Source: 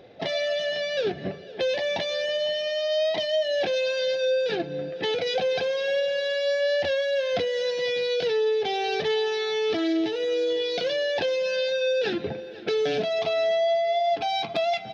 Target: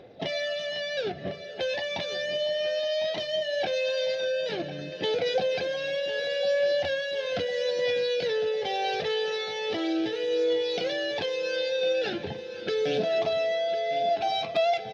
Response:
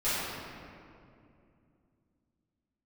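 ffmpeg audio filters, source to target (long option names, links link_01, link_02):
-filter_complex "[0:a]aphaser=in_gain=1:out_gain=1:delay=1.7:decay=0.35:speed=0.38:type=triangular,asplit=2[link_01][link_02];[link_02]aecho=0:1:1053|2106|3159|4212|5265|6318:0.224|0.132|0.0779|0.046|0.0271|0.016[link_03];[link_01][link_03]amix=inputs=2:normalize=0,volume=-3dB"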